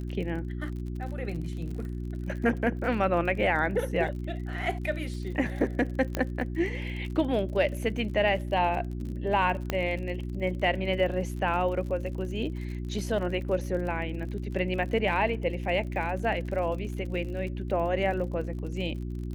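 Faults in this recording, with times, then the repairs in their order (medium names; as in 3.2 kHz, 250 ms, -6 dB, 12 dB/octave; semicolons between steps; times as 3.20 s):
crackle 49 per s -37 dBFS
hum 60 Hz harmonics 6 -34 dBFS
6.15 s: pop -14 dBFS
9.70 s: pop -13 dBFS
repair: de-click; de-hum 60 Hz, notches 6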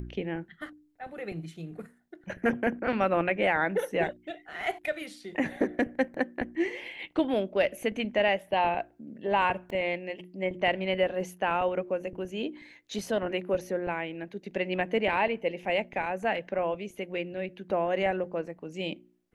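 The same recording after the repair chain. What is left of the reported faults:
6.15 s: pop
9.70 s: pop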